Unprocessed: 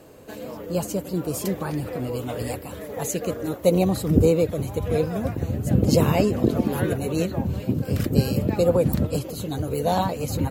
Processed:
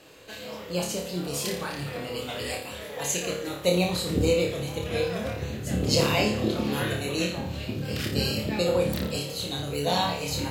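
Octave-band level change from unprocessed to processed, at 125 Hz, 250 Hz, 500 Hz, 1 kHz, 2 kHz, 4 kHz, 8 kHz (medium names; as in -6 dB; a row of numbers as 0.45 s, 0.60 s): -7.0 dB, -6.0 dB, -4.0 dB, -2.5 dB, +5.0 dB, +8.0 dB, +1.5 dB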